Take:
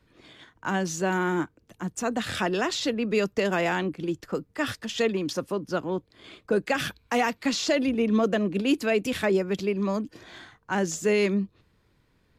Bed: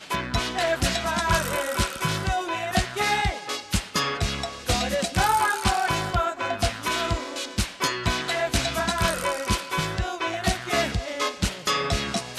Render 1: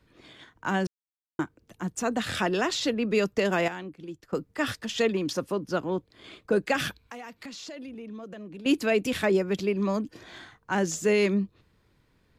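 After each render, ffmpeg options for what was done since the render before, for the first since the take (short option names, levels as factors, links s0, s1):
-filter_complex "[0:a]asettb=1/sr,asplit=3[s0][s1][s2];[s0]atrim=end=7.024[s3];[s1]atrim=start=7.02:end=8.66,asetpts=PTS-STARTPTS,afade=t=in:d=0.004:c=qsin,afade=t=out:st=1.636:d=0.004:c=qsin,acompressor=threshold=0.01:ratio=5:attack=3.2:release=140:knee=1:detection=peak[s4];[s2]atrim=start=8.656[s5];[s3][s4]acrossfade=d=0.004:c1=hsin:c2=qsin[s6];[s6][s5]acrossfade=d=0.004:c1=qsin:c2=hsin,asplit=5[s7][s8][s9][s10][s11];[s7]atrim=end=0.87,asetpts=PTS-STARTPTS,afade=t=out:st=0.866:d=0.004:c=hsin[s12];[s8]atrim=start=0.87:end=1.39,asetpts=PTS-STARTPTS,volume=0[s13];[s9]atrim=start=1.39:end=3.682,asetpts=PTS-STARTPTS,afade=t=in:d=0.004:c=hsin[s14];[s10]atrim=start=3.678:end=4.332,asetpts=PTS-STARTPTS,volume=0.299[s15];[s11]atrim=start=4.328[s16];[s12][s13][s14]concat=n=3:v=0:a=1[s17];[s17][s15]acrossfade=d=0.004:c1=hsin:c2=hsin[s18];[s18][s16]acrossfade=d=0.004:c1=hsin:c2=hsin"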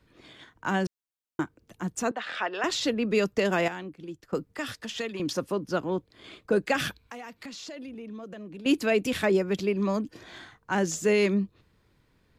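-filter_complex "[0:a]asettb=1/sr,asplit=3[s0][s1][s2];[s0]atrim=end=2.114[s3];[s1]atrim=start=2.11:end=2.64,asetpts=PTS-STARTPTS,afade=t=in:d=0.004:c=qsin,afade=t=out:st=0.526:d=0.004:c=qsin,highpass=640,lowpass=2800[s4];[s2]atrim=start=2.636[s5];[s3][s4]acrossfade=d=0.004:c1=hsin:c2=qsin[s6];[s6][s5]acrossfade=d=0.004:c1=qsin:c2=hsin,asettb=1/sr,asplit=3[s7][s8][s9];[s7]atrim=end=4.464[s10];[s8]atrim=start=4.46:end=5.2,asetpts=PTS-STARTPTS,afade=t=in:d=0.004:c=qsin,afade=t=out:st=0.736:d=0.004:c=qsin,acrossover=split=240|890|2700|7000[s11][s12][s13][s14][s15];[s11]acompressor=threshold=0.00501:ratio=3[s16];[s12]acompressor=threshold=0.0126:ratio=3[s17];[s13]acompressor=threshold=0.0112:ratio=3[s18];[s14]acompressor=threshold=0.00891:ratio=3[s19];[s15]acompressor=threshold=0.00282:ratio=3[s20];[s16][s17][s18][s19][s20]amix=inputs=5:normalize=0[s21];[s9]atrim=start=5.196[s22];[s10][s21]acrossfade=d=0.004:c1=hsin:c2=qsin[s23];[s23][s22]acrossfade=d=0.004:c1=qsin:c2=hsin"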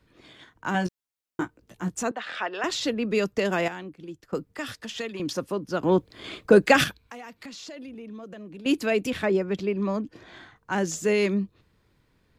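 -filter_complex "[0:a]asettb=1/sr,asplit=3[s0][s1][s2];[s0]atrim=end=0.734[s3];[s1]atrim=start=0.73:end=2.03,asetpts=PTS-STARTPTS,afade=t=in:d=0.004:c=qsin,afade=t=out:st=1.296:d=0.004:c=qsin,asplit=2[s4][s5];[s5]adelay=17,volume=0.631[s6];[s4][s6]amix=inputs=2:normalize=0,atrim=end_sample=57330[s7];[s2]atrim=start=2.026[s8];[s3][s7]acrossfade=d=0.004:c1=hsin:c2=qsin[s9];[s9][s8]acrossfade=d=0.004:c1=qsin:c2=hsin,asettb=1/sr,asplit=3[s10][s11][s12];[s10]atrim=end=9.104[s13];[s11]atrim=start=9.1:end=10.56,asetpts=PTS-STARTPTS,afade=t=in:d=0.004:c=qsin,afade=t=out:st=1.456:d=0.004:c=qsin,highshelf=f=5300:g=-11.5[s14];[s12]atrim=start=10.556[s15];[s13][s14]acrossfade=d=0.004:c1=hsin:c2=qsin[s16];[s16][s15]acrossfade=d=0.004:c1=qsin:c2=hsin,asplit=3[s17][s18][s19];[s17]atrim=end=5.832[s20];[s18]atrim=start=5.828:end=6.842,asetpts=PTS-STARTPTS,volume=2.66[s21];[s19]atrim=start=6.838[s22];[s20][s21]acrossfade=d=0.004:c1=hsin:c2=hsin[s23];[s23][s22]acrossfade=d=0.004:c1=hsin:c2=hsin"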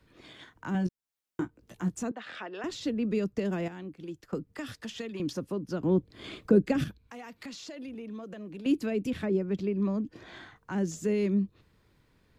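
-filter_complex "[0:a]acrossover=split=360[s0][s1];[s1]acompressor=threshold=0.00708:ratio=3[s2];[s0][s2]amix=inputs=2:normalize=0"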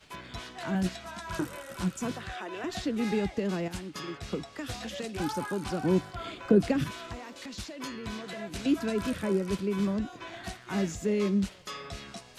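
-filter_complex "[1:a]volume=0.158[s0];[0:a][s0]amix=inputs=2:normalize=0"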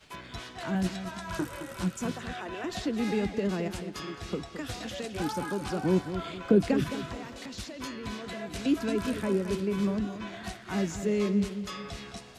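-filter_complex "[0:a]asplit=2[s0][s1];[s1]adelay=216,lowpass=f=4100:p=1,volume=0.316,asplit=2[s2][s3];[s3]adelay=216,lowpass=f=4100:p=1,volume=0.37,asplit=2[s4][s5];[s5]adelay=216,lowpass=f=4100:p=1,volume=0.37,asplit=2[s6][s7];[s7]adelay=216,lowpass=f=4100:p=1,volume=0.37[s8];[s0][s2][s4][s6][s8]amix=inputs=5:normalize=0"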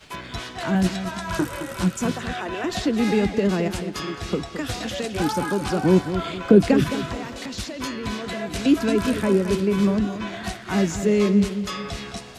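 -af "volume=2.66,alimiter=limit=0.794:level=0:latency=1"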